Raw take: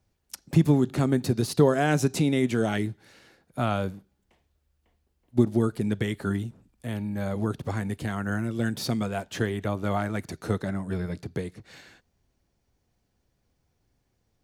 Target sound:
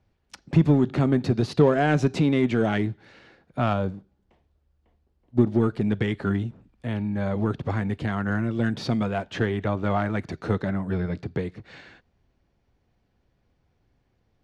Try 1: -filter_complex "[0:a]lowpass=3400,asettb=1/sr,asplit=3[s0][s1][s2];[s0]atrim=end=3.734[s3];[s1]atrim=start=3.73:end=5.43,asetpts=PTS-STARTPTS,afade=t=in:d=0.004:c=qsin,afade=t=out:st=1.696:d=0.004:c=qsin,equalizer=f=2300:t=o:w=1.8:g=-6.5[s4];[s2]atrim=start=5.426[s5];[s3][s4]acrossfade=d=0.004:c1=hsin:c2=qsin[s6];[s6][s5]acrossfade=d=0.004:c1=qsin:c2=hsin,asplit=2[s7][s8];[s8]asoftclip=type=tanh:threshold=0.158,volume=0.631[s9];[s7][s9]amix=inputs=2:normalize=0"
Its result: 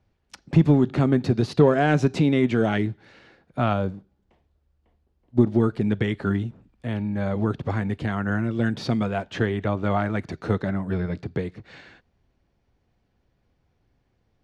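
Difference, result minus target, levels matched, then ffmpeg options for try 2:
saturation: distortion -7 dB
-filter_complex "[0:a]lowpass=3400,asettb=1/sr,asplit=3[s0][s1][s2];[s0]atrim=end=3.734[s3];[s1]atrim=start=3.73:end=5.43,asetpts=PTS-STARTPTS,afade=t=in:d=0.004:c=qsin,afade=t=out:st=1.696:d=0.004:c=qsin,equalizer=f=2300:t=o:w=1.8:g=-6.5[s4];[s2]atrim=start=5.426[s5];[s3][s4]acrossfade=d=0.004:c1=hsin:c2=qsin[s6];[s6][s5]acrossfade=d=0.004:c1=qsin:c2=hsin,asplit=2[s7][s8];[s8]asoftclip=type=tanh:threshold=0.0562,volume=0.631[s9];[s7][s9]amix=inputs=2:normalize=0"

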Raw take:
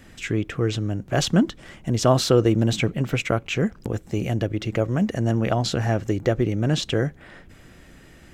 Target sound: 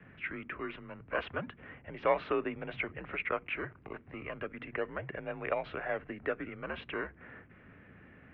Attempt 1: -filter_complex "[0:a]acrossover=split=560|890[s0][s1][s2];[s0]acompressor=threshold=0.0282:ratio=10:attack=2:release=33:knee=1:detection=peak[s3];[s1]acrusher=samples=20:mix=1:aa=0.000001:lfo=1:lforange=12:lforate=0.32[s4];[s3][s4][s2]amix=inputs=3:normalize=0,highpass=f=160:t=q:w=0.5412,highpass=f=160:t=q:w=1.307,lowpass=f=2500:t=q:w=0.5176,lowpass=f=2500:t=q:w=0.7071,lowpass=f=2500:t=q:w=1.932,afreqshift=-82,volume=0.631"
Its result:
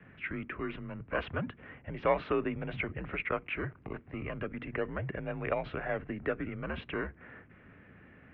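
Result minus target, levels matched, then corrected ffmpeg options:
compression: peak gain reduction -10 dB
-filter_complex "[0:a]acrossover=split=560|890[s0][s1][s2];[s0]acompressor=threshold=0.00794:ratio=10:attack=2:release=33:knee=1:detection=peak[s3];[s1]acrusher=samples=20:mix=1:aa=0.000001:lfo=1:lforange=12:lforate=0.32[s4];[s3][s4][s2]amix=inputs=3:normalize=0,highpass=f=160:t=q:w=0.5412,highpass=f=160:t=q:w=1.307,lowpass=f=2500:t=q:w=0.5176,lowpass=f=2500:t=q:w=0.7071,lowpass=f=2500:t=q:w=1.932,afreqshift=-82,volume=0.631"

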